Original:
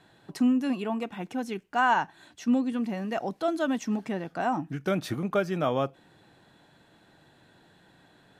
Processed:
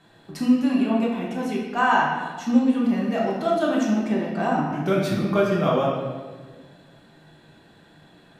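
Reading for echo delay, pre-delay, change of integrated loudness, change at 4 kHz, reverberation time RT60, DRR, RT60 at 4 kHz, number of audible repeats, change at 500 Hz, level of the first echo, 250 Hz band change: none, 5 ms, +6.0 dB, +5.5 dB, 1.5 s, -4.0 dB, 1.1 s, none, +7.0 dB, none, +6.5 dB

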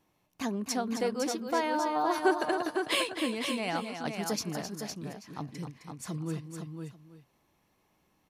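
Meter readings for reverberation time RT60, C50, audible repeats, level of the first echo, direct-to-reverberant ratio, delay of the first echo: none, none, 3, -8.5 dB, none, 0.263 s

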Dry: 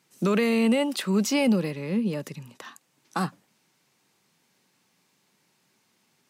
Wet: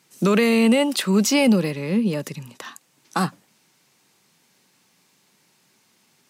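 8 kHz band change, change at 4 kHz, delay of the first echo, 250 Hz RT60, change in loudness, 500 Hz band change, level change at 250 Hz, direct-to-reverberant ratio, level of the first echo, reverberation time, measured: +8.0 dB, +7.0 dB, none, none, +5.5 dB, +5.0 dB, +5.0 dB, none, none, none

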